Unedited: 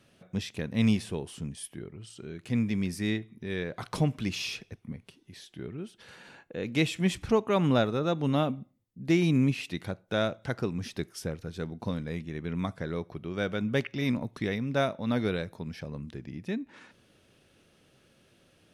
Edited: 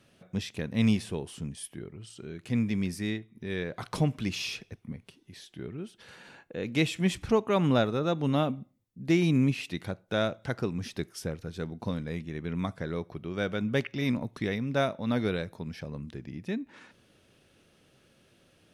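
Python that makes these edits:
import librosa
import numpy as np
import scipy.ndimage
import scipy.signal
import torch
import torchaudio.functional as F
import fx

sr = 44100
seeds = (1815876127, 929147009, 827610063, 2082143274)

y = fx.edit(x, sr, fx.fade_out_to(start_s=2.88, length_s=0.47, floor_db=-7.0), tone=tone)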